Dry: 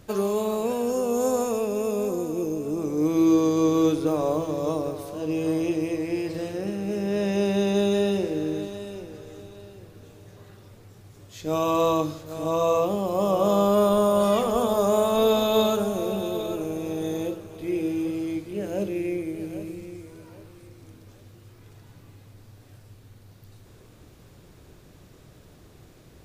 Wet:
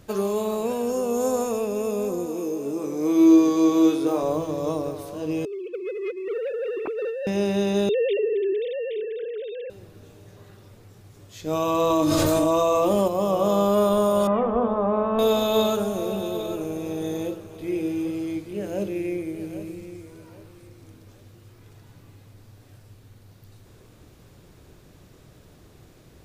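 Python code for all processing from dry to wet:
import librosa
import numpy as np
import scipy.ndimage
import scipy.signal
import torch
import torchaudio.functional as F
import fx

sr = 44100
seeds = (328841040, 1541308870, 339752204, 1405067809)

y = fx.chain(x, sr, fx.highpass(hz=220.0, slope=12),
    fx.room_flutter(wall_m=3.7, rt60_s=0.23), at=(2.26, 4.23))
y = fx.chain(y, sr, fx.sine_speech(),
    fx.over_compress(threshold_db=-33.0, ratio=-1.0),
    fx.leveller(passes=1), at=(5.45, 7.27))
y = fx.chain(y, sr, fx.sine_speech(),
    fx.env_flatten(amount_pct=50), at=(7.89, 9.7))
y = fx.chain(y, sr, fx.peak_eq(hz=8700.0, db=5.5, octaves=0.39),
    fx.comb(ms=3.3, depth=0.44),
    fx.env_flatten(amount_pct=100), at=(11.9, 13.08))
y = fx.chain(y, sr, fx.lowpass(hz=2000.0, slope=24),
    fx.comb(ms=3.9, depth=0.4), at=(14.27, 15.19))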